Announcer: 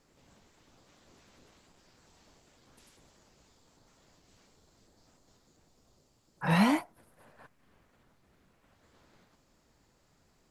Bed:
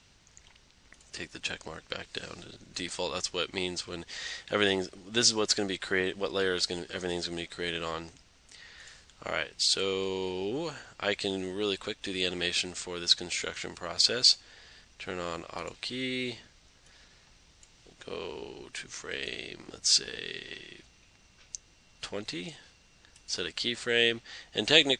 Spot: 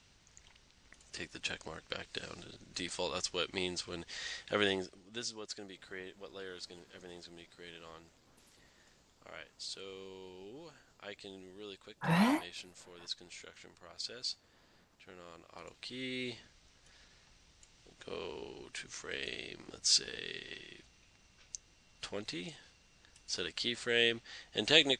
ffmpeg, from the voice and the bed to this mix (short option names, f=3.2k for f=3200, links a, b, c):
-filter_complex "[0:a]adelay=5600,volume=-4dB[a];[1:a]volume=9dB,afade=t=out:st=4.52:d=0.73:silence=0.211349,afade=t=in:st=15.36:d=1.13:silence=0.223872[b];[a][b]amix=inputs=2:normalize=0"